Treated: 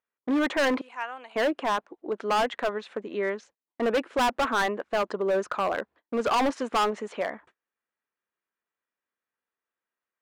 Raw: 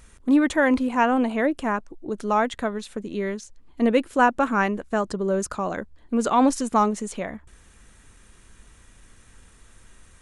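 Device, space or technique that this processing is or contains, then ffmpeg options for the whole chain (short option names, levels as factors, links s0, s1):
walkie-talkie: -filter_complex "[0:a]asettb=1/sr,asplit=3[s0][s1][s2];[s0]atrim=end=0.814[s3];[s1]atrim=start=0.81:end=1.36,asetpts=PTS-STARTPTS,afade=t=in:d=0.004:c=qsin,afade=t=out:st=0.546:d=0.004:c=qsin,aderivative[s4];[s2]atrim=start=1.356[s5];[s3][s4]acrossfade=d=0.004:c1=hsin:c2=qsin[s6];[s6][s5]acrossfade=d=0.004:c1=qsin:c2=hsin,highpass=470,lowpass=2300,asoftclip=type=hard:threshold=0.0562,agate=range=0.0178:threshold=0.00178:ratio=16:detection=peak,volume=1.68"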